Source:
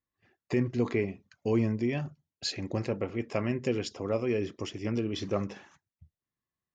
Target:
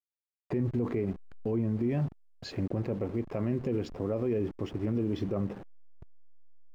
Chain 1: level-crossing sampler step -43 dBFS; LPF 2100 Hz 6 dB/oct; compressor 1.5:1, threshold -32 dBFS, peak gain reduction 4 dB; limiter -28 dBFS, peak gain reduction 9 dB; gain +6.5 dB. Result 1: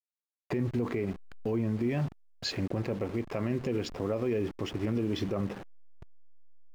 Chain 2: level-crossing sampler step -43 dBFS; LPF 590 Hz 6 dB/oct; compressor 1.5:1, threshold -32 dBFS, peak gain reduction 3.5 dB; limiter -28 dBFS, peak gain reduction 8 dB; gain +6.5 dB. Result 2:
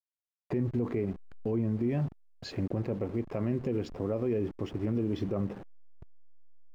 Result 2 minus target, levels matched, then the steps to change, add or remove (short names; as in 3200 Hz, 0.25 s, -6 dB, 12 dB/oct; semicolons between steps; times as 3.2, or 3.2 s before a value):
compressor: peak gain reduction +3.5 dB
remove: compressor 1.5:1, threshold -32 dBFS, peak gain reduction 3.5 dB